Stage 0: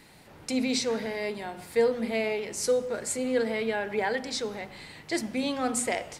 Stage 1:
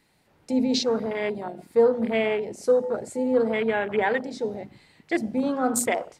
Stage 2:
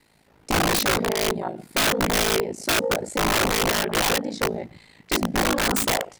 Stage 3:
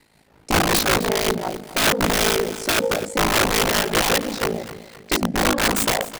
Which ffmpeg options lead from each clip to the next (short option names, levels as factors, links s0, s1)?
-af "afwtdn=0.0224,volume=1.78"
-af "aeval=exprs='val(0)*sin(2*PI*27*n/s)':c=same,aeval=exprs='(mod(13.3*val(0)+1,2)-1)/13.3':c=same,volume=2.37"
-af "tremolo=f=5.3:d=0.34,aecho=1:1:259|518|777|1036:0.178|0.0729|0.0299|0.0123,volume=1.58"